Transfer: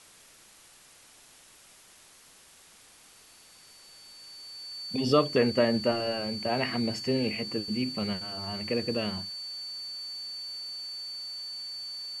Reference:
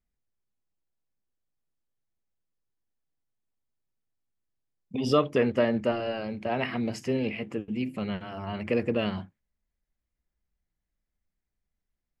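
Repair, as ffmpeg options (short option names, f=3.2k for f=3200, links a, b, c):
-af "bandreject=f=4.5k:w=30,afwtdn=0.0022,asetnsamples=n=441:p=0,asendcmd='8.13 volume volume 3.5dB',volume=0dB"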